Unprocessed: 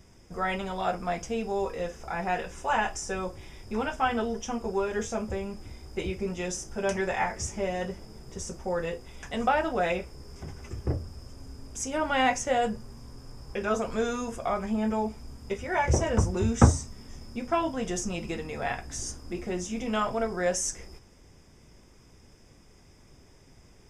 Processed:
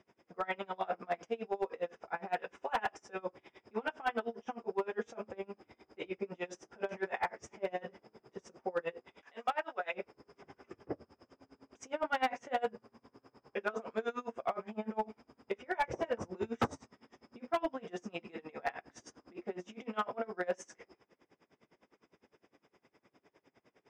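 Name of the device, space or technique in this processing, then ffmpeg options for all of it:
helicopter radio: -filter_complex "[0:a]asettb=1/sr,asplit=3[a][b][c];[a]atrim=end=9.214[d];[b]atrim=start=9.21:end=9.94,asetpts=PTS-STARTPTS,afade=t=in:d=0.004:c=qsin,afade=t=out:st=0.726:d=0.004:c=qsin,highpass=f=1.1k:p=1[e];[c]atrim=start=9.936[f];[d][e]acrossfade=d=0.004:c1=hsin:c2=qsin[g];[g][f]acrossfade=d=0.004:c1=qsin:c2=hsin,highpass=310,lowpass=2.7k,aeval=exprs='val(0)*pow(10,-27*(0.5-0.5*cos(2*PI*9.8*n/s))/20)':c=same,asoftclip=type=hard:threshold=-24.5dB"

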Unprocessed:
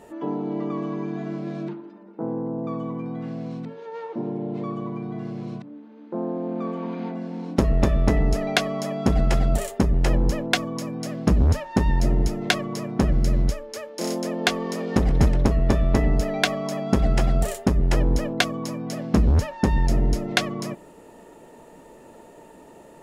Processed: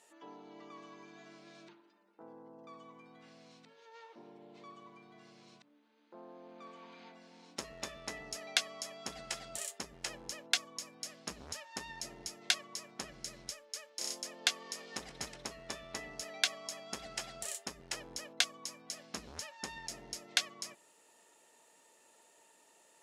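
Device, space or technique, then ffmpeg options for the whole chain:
piezo pickup straight into a mixer: -af "lowpass=7.6k,aderivative"

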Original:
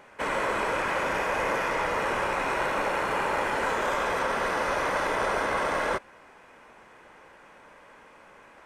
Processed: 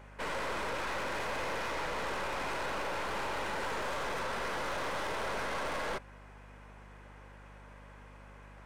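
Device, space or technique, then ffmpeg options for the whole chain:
valve amplifier with mains hum: -af "aeval=exprs='(tanh(39.8*val(0)+0.6)-tanh(0.6))/39.8':c=same,aeval=exprs='val(0)+0.00282*(sin(2*PI*50*n/s)+sin(2*PI*2*50*n/s)/2+sin(2*PI*3*50*n/s)/3+sin(2*PI*4*50*n/s)/4+sin(2*PI*5*50*n/s)/5)':c=same,volume=-1.5dB"

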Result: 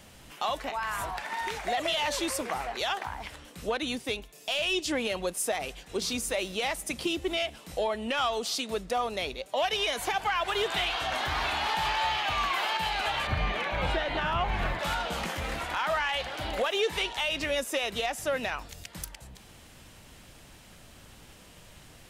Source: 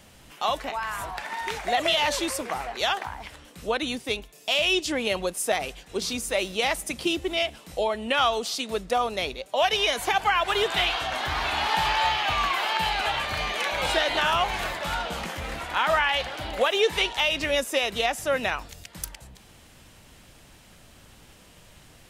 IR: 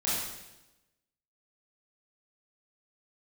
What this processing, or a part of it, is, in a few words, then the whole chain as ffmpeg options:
soft clipper into limiter: -filter_complex "[0:a]asoftclip=type=tanh:threshold=-14.5dB,alimiter=limit=-20.5dB:level=0:latency=1:release=306,asettb=1/sr,asplit=3[a][b][c];[a]atrim=end=13.274[d];[b]atrim=start=13.27:end=14.79,asetpts=PTS-STARTPTS,afade=t=in:d=0.004:c=qsin,afade=t=out:st=1.516:d=0.004:c=qsin,bass=f=250:g=10,treble=f=4k:g=-14[e];[c]atrim=start=14.786[f];[d][e]acrossfade=d=0.004:c1=hsin:c2=qsin[g];[g][f]acrossfade=d=0.004:c1=qsin:c2=hsin"

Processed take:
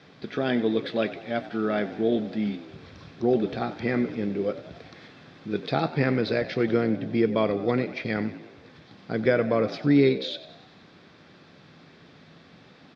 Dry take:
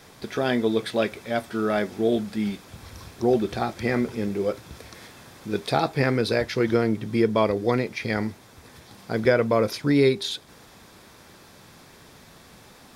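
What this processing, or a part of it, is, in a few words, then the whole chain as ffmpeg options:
frequency-shifting delay pedal into a guitar cabinet: -filter_complex "[0:a]asplit=7[a][b][c][d][e][f][g];[b]adelay=94,afreqshift=60,volume=-15.5dB[h];[c]adelay=188,afreqshift=120,volume=-20.2dB[i];[d]adelay=282,afreqshift=180,volume=-25dB[j];[e]adelay=376,afreqshift=240,volume=-29.7dB[k];[f]adelay=470,afreqshift=300,volume=-34.4dB[l];[g]adelay=564,afreqshift=360,volume=-39.2dB[m];[a][h][i][j][k][l][m]amix=inputs=7:normalize=0,highpass=99,equalizer=f=160:t=q:w=4:g=6,equalizer=f=280:t=q:w=4:g=4,equalizer=f=940:t=q:w=4:g=-6,lowpass=f=4.4k:w=0.5412,lowpass=f=4.4k:w=1.3066,volume=-2.5dB"

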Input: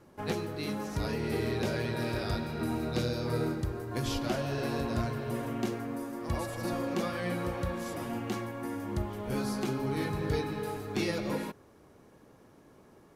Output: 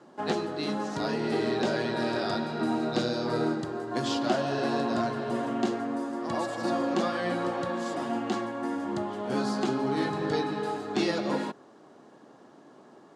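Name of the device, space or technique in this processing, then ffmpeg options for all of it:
television speaker: -af "highpass=f=170:w=0.5412,highpass=f=170:w=1.3066,equalizer=f=180:t=q:w=4:g=-5,equalizer=f=480:t=q:w=4:g=-4,equalizer=f=720:t=q:w=4:g=4,equalizer=f=2.3k:t=q:w=4:g=-8,equalizer=f=5.8k:t=q:w=4:g=-5,lowpass=f=7.5k:w=0.5412,lowpass=f=7.5k:w=1.3066,volume=6dB"

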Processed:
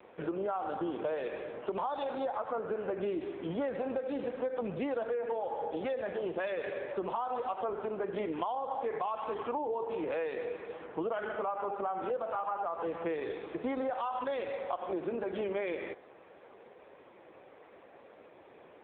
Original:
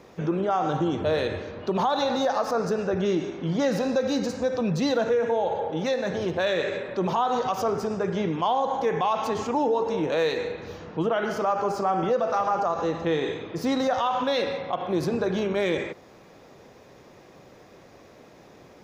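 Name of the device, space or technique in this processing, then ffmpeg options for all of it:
voicemail: -af "highpass=350,lowpass=3.2k,acompressor=threshold=-30dB:ratio=8" -ar 8000 -c:a libopencore_amrnb -b:a 5900

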